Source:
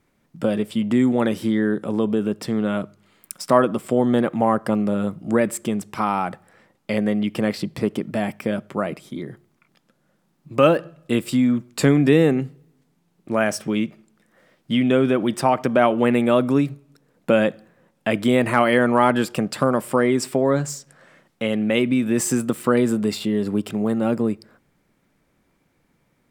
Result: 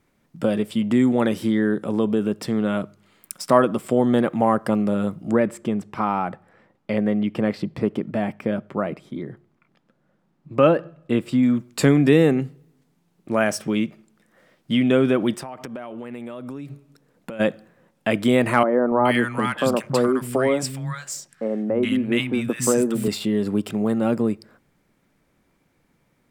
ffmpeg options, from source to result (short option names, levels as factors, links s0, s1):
-filter_complex "[0:a]asettb=1/sr,asplit=3[s0][s1][s2];[s0]atrim=end=5.324[s3];[s1]atrim=start=5.32:end=11.43,asetpts=PTS-STARTPTS,afade=t=in:d=0.004:c=qsin,afade=t=out:st=6.106:d=0.004:c=qsin,lowpass=f=1900:p=1[s4];[s2]atrim=start=11.426[s5];[s3][s4]acrossfade=d=0.004:c1=hsin:c2=qsin[s6];[s6][s5]acrossfade=d=0.004:c1=qsin:c2=hsin,asplit=3[s7][s8][s9];[s7]afade=t=out:st=15.35:d=0.02[s10];[s8]acompressor=threshold=0.0316:ratio=12:attack=3.2:release=140:knee=1:detection=peak,afade=t=in:st=15.35:d=0.02,afade=t=out:st=17.39:d=0.02[s11];[s9]afade=t=in:st=17.39:d=0.02[s12];[s10][s11][s12]amix=inputs=3:normalize=0,asettb=1/sr,asplit=3[s13][s14][s15];[s13]atrim=end=18.634[s16];[s14]atrim=start=18.63:end=23.08,asetpts=PTS-STARTPTS,afade=t=in:d=0.004:c=qsin,afade=t=out:st=4.446:d=0.004:c=qsin,acrossover=split=190|1200[s17][s18][s19];[s17]adelay=280[s20];[s19]adelay=420[s21];[s20][s18][s21]amix=inputs=3:normalize=0,atrim=end_sample=196245[s22];[s15]atrim=start=23.076[s23];[s16][s22]acrossfade=d=0.004:c1=hsin:c2=qsin[s24];[s24][s23]acrossfade=d=0.004:c1=qsin:c2=hsin"